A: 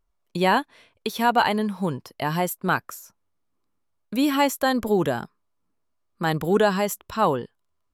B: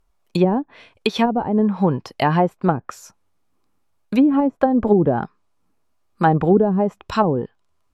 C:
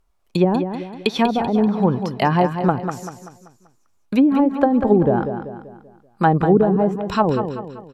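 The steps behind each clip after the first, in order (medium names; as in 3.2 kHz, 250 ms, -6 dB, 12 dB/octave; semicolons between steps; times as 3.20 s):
low-pass that closes with the level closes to 360 Hz, closed at -17 dBFS; small resonant body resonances 790/2500 Hz, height 6 dB; trim +8 dB
feedback delay 193 ms, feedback 43%, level -8.5 dB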